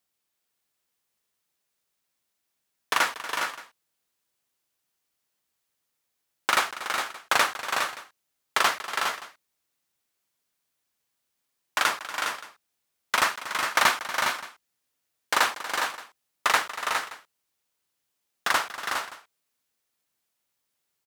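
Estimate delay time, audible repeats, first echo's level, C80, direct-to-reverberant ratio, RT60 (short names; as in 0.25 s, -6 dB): 0.237 s, 4, -14.5 dB, none, none, none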